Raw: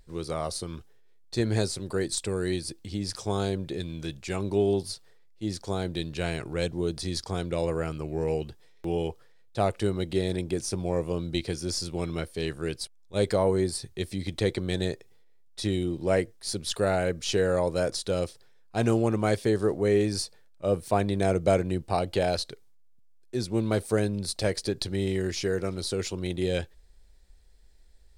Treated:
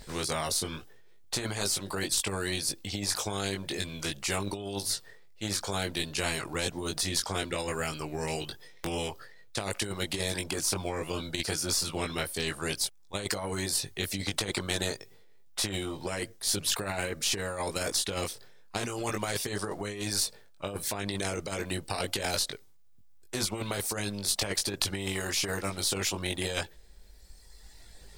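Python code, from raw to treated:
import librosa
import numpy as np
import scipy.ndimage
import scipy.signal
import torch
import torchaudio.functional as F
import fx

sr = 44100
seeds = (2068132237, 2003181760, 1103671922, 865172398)

y = fx.dereverb_blind(x, sr, rt60_s=1.5)
y = fx.doubler(y, sr, ms=20.0, db=-4)
y = fx.over_compress(y, sr, threshold_db=-29.0, ratio=-1.0)
y = fx.spectral_comp(y, sr, ratio=2.0)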